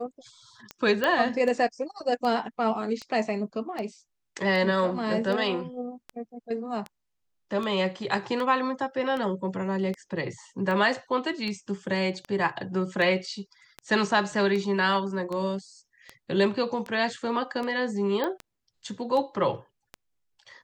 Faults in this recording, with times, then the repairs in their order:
tick 78 rpm -21 dBFS
1.04 pop -12 dBFS
18.24 pop -15 dBFS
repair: de-click

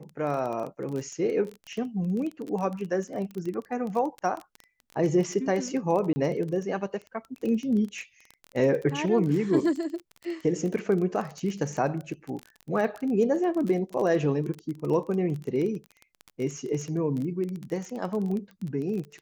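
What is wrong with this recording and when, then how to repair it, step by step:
crackle 21/s -31 dBFS
6.13–6.16 gap 30 ms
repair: de-click; interpolate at 6.13, 30 ms

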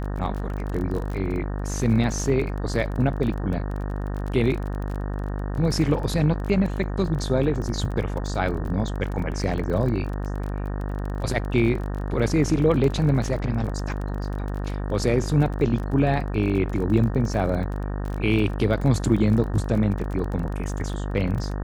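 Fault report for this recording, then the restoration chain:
buzz 50 Hz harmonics 37 -28 dBFS
crackle 30/s -30 dBFS
12.84 gap 2.6 ms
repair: de-click; de-hum 50 Hz, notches 37; interpolate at 12.84, 2.6 ms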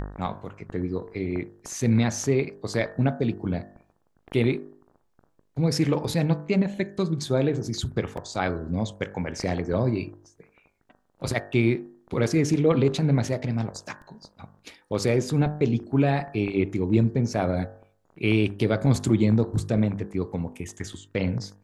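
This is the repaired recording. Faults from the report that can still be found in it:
none

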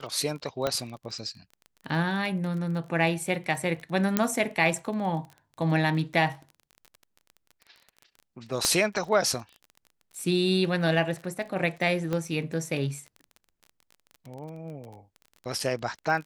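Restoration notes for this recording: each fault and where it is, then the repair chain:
crackle 24/s -36 dBFS
0.67 pop -12 dBFS
4.17 pop -7 dBFS
8.65 pop -9 dBFS
12.13 pop -17 dBFS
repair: de-click

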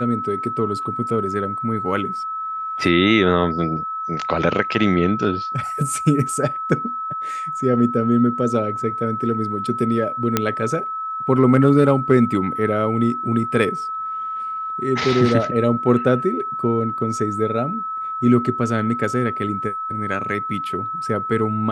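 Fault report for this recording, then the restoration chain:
tone 1300 Hz -24 dBFS
10.37 pop -2 dBFS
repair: de-click; notch 1300 Hz, Q 30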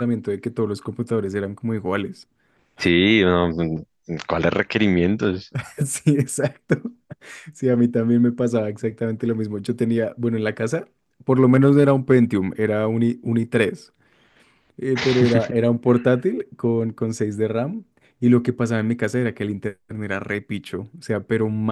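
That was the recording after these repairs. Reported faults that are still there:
none

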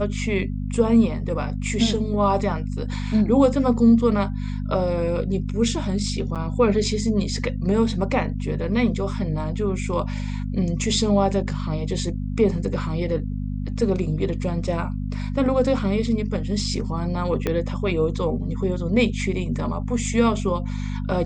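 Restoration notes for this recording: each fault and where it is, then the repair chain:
hum 50 Hz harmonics 5 -27 dBFS
6.35–6.36 gap 7 ms
17.47 pop -10 dBFS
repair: de-click; de-hum 50 Hz, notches 5; interpolate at 6.35, 7 ms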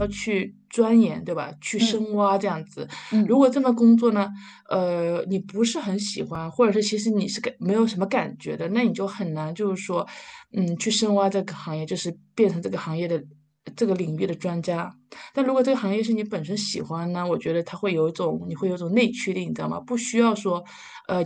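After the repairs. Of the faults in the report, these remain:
17.47 pop

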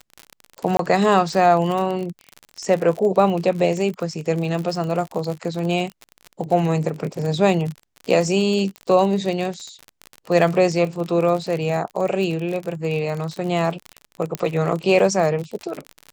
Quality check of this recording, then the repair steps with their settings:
crackle 45/s -25 dBFS
0.77–0.79 gap 23 ms
14.35 pop -9 dBFS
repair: de-click; interpolate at 0.77, 23 ms

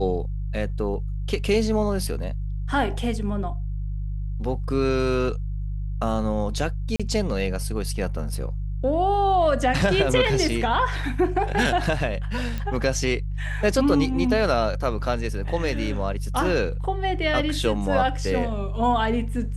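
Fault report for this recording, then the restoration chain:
hum 50 Hz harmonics 3 -28 dBFS
6.96–7 gap 36 ms
12.58 pop -17 dBFS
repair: de-click; de-hum 50 Hz, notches 3; interpolate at 6.96, 36 ms

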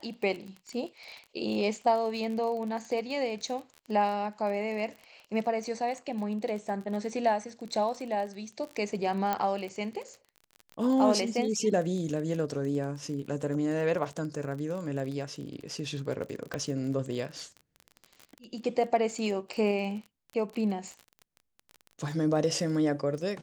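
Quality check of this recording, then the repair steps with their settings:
crackle 33/s -36 dBFS
9.33 pop -15 dBFS
16.54 pop -19 dBFS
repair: de-click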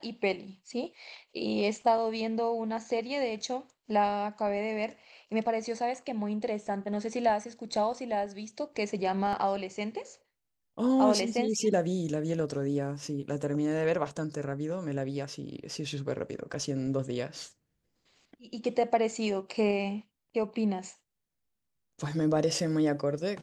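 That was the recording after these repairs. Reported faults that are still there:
9.33 pop
16.54 pop

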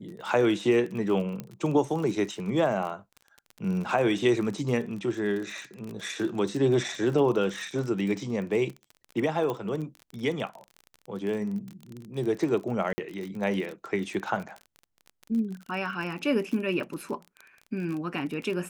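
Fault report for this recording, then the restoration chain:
crackle 34/s -33 dBFS
1.4 pop -21 dBFS
9.5 pop -19 dBFS
12.93–12.98 gap 50 ms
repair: de-click; interpolate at 12.93, 50 ms

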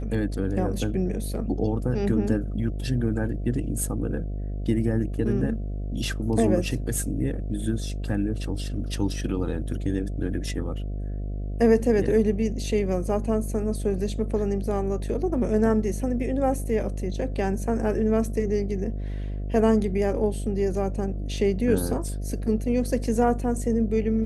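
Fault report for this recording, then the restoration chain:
buzz 50 Hz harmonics 14 -30 dBFS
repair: de-hum 50 Hz, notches 14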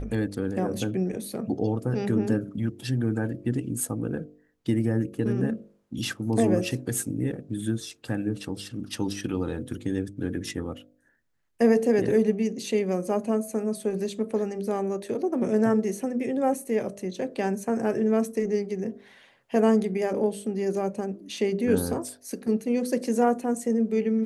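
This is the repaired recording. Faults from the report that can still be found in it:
none

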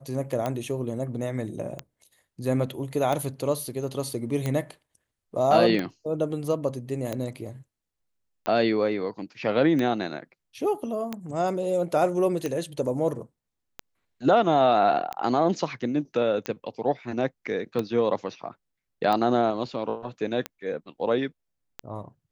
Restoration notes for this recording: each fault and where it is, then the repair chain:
tick 45 rpm -15 dBFS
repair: de-click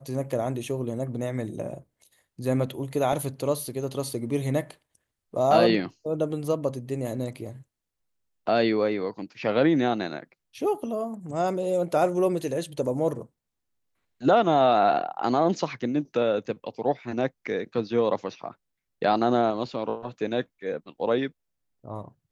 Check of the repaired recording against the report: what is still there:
none

